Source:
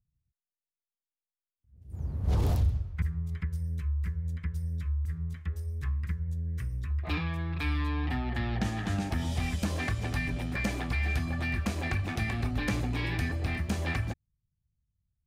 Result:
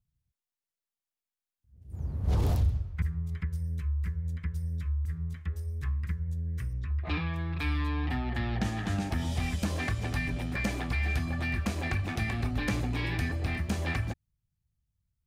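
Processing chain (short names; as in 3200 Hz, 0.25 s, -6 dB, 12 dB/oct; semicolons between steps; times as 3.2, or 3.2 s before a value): 6.73–7.36 LPF 5000 Hz 12 dB/oct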